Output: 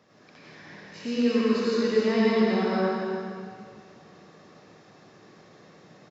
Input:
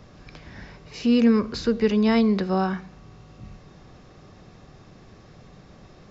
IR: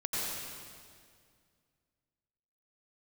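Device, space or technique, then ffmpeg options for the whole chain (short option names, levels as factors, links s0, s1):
stadium PA: -filter_complex "[0:a]highpass=240,equalizer=f=1800:t=o:w=0.23:g=4,aecho=1:1:233.2|288.6:0.316|0.316[s0];[1:a]atrim=start_sample=2205[s1];[s0][s1]afir=irnorm=-1:irlink=0,volume=0.422"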